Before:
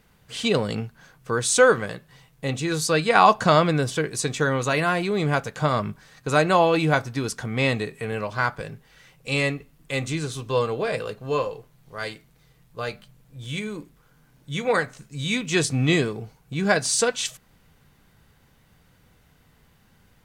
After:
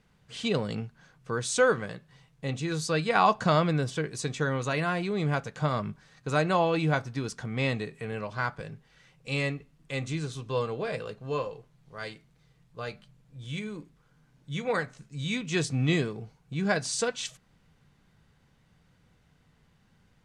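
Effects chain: LPF 8000 Hz 12 dB/oct; bell 160 Hz +4 dB 0.97 oct; gain -7 dB

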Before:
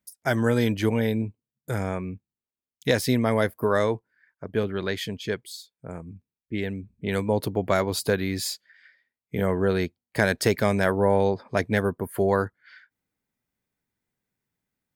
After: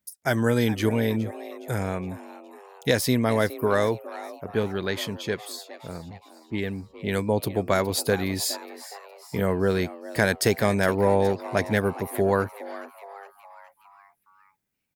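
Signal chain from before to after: high shelf 6300 Hz +5 dB; on a send: frequency-shifting echo 0.415 s, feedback 53%, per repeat +150 Hz, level -16 dB

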